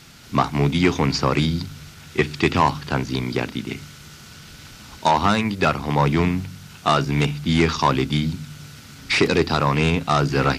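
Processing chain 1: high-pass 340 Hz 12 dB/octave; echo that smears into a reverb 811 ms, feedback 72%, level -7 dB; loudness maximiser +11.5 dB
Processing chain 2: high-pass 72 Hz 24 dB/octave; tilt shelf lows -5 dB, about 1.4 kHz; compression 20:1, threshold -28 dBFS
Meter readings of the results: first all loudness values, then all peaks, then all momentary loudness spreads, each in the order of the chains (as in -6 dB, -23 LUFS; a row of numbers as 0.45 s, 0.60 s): -13.5 LUFS, -33.5 LUFS; -1.0 dBFS, -13.0 dBFS; 6 LU, 7 LU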